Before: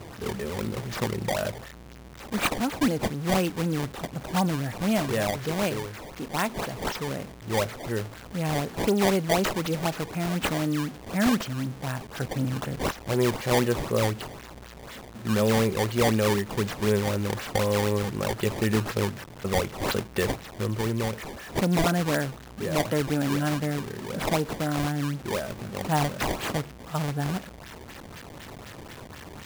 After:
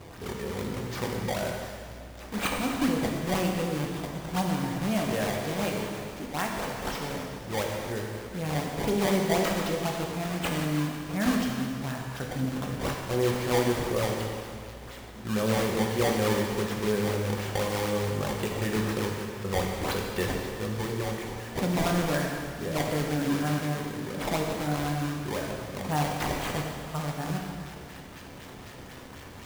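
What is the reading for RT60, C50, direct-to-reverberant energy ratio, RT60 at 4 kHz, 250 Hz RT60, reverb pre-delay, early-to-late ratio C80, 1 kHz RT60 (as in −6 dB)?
2.2 s, 2.0 dB, −0.5 dB, 2.0 s, 2.3 s, 4 ms, 3.0 dB, 2.2 s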